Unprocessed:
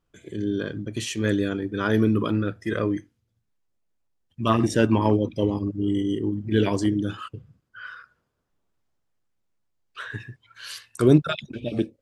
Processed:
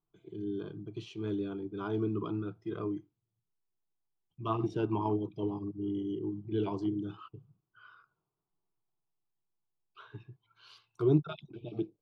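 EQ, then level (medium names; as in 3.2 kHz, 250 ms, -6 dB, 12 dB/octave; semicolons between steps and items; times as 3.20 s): distance through air 310 m; bass shelf 140 Hz -3.5 dB; static phaser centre 360 Hz, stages 8; -6.5 dB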